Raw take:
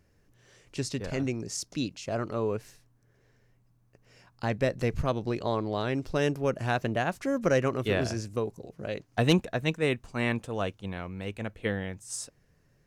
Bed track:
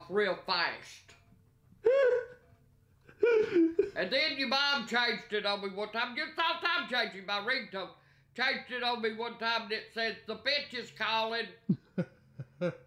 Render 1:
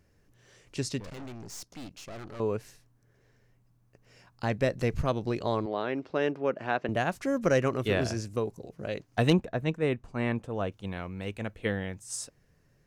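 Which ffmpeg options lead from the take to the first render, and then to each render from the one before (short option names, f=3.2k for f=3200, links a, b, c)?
-filter_complex "[0:a]asettb=1/sr,asplit=3[a][b][c];[a]atrim=end=1.004[d];[b]atrim=start=1:end=2.4,asetpts=PTS-STARTPTS,afade=t=in:d=0.004:c=qsin,afade=t=out:st=1.396:d=0.004:c=qsin,aeval=exprs='(tanh(100*val(0)+0.7)-tanh(0.7))/100':c=same[e];[c]atrim=start=2.396[f];[d][e]acrossfade=d=0.004:c1=hsin:c2=qsin[g];[g][f]acrossfade=d=0.004:c1=qsin:c2=hsin,asettb=1/sr,asplit=3[h][i][j];[h]atrim=end=5.664[k];[i]atrim=start=5.66:end=6.89,asetpts=PTS-STARTPTS,afade=t=in:d=0.004:c=qsin,afade=t=out:st=1.226:d=0.004:c=qsin,highpass=250,lowpass=2.8k[l];[j]atrim=start=6.886[m];[k][l]acrossfade=d=0.004:c1=hsin:c2=qsin[n];[n][m]acrossfade=d=0.004:c1=qsin:c2=hsin,asettb=1/sr,asplit=3[o][p][q];[o]atrim=end=9.304[r];[p]atrim=start=9.3:end=10.72,asetpts=PTS-STARTPTS,afade=t=in:d=0.004:c=qsin,afade=t=out:st=1.416:d=0.004:c=qsin,highshelf=f=2.3k:g=-11.5[s];[q]atrim=start=10.716[t];[r][s]acrossfade=d=0.004:c1=hsin:c2=qsin[u];[u][t]acrossfade=d=0.004:c1=qsin:c2=hsin"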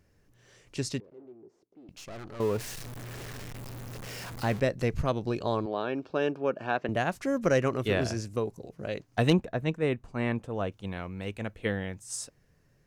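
-filter_complex "[0:a]asettb=1/sr,asplit=3[a][b][c];[a]atrim=end=1.004[d];[b]atrim=start=1:end=1.89,asetpts=PTS-STARTPTS,afade=t=in:d=0.004:c=qsin,afade=t=out:st=0.886:d=0.004:c=qsin,bandpass=f=380:t=q:w=4.3[e];[c]atrim=start=1.886[f];[d][e]acrossfade=d=0.004:c1=hsin:c2=qsin[g];[g][f]acrossfade=d=0.004:c1=qsin:c2=hsin,asettb=1/sr,asplit=3[h][i][j];[h]atrim=end=2.404[k];[i]atrim=start=2.4:end=4.6,asetpts=PTS-STARTPTS,afade=t=in:d=0.004:c=qsin,afade=t=out:st=2.196:d=0.004:c=qsin,aeval=exprs='val(0)+0.5*0.0178*sgn(val(0))':c=same[l];[j]atrim=start=4.596[m];[k][l]acrossfade=d=0.004:c1=hsin:c2=qsin[n];[n][m]acrossfade=d=0.004:c1=qsin:c2=hsin,asettb=1/sr,asplit=3[o][p][q];[o]atrim=end=5.274[r];[p]atrim=start=5.27:end=6.76,asetpts=PTS-STARTPTS,afade=t=in:d=0.004:c=qsin,afade=t=out:st=1.486:d=0.004:c=qsin,asuperstop=centerf=2000:order=8:qfactor=5.8[s];[q]atrim=start=6.756[t];[r][s]acrossfade=d=0.004:c1=hsin:c2=qsin[u];[u][t]acrossfade=d=0.004:c1=qsin:c2=hsin"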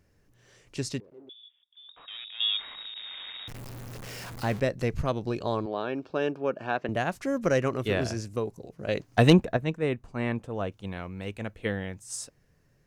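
-filter_complex "[0:a]asettb=1/sr,asplit=3[a][b][c];[a]atrim=end=1.294[d];[b]atrim=start=1.29:end=3.48,asetpts=PTS-STARTPTS,afade=t=in:d=0.004:c=qsin,afade=t=out:st=2.186:d=0.004:c=qsin,lowpass=f=3.2k:t=q:w=0.5098,lowpass=f=3.2k:t=q:w=0.6013,lowpass=f=3.2k:t=q:w=0.9,lowpass=f=3.2k:t=q:w=2.563,afreqshift=-3800[e];[c]atrim=start=3.476[f];[d][e]acrossfade=d=0.004:c1=hsin:c2=qsin[g];[g][f]acrossfade=d=0.004:c1=qsin:c2=hsin,asettb=1/sr,asplit=3[h][i][j];[h]atrim=end=8.884[k];[i]atrim=start=8.88:end=9.57,asetpts=PTS-STARTPTS,afade=t=in:d=0.004:c=qsin,afade=t=out:st=0.686:d=0.004:c=qsin,acontrast=48[l];[j]atrim=start=9.566[m];[k][l]acrossfade=d=0.004:c1=hsin:c2=qsin[n];[n][m]acrossfade=d=0.004:c1=qsin:c2=hsin"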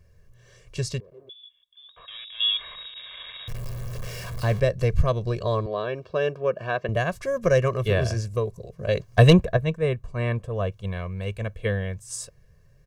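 -af "lowshelf=f=150:g=9,aecho=1:1:1.8:0.82"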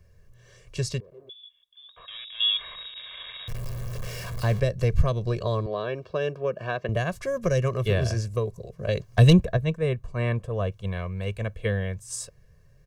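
-filter_complex "[0:a]acrossover=split=350|3000[a][b][c];[b]acompressor=threshold=-26dB:ratio=6[d];[a][d][c]amix=inputs=3:normalize=0"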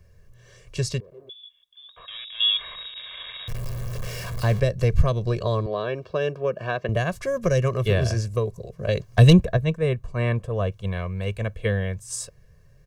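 -af "volume=2.5dB"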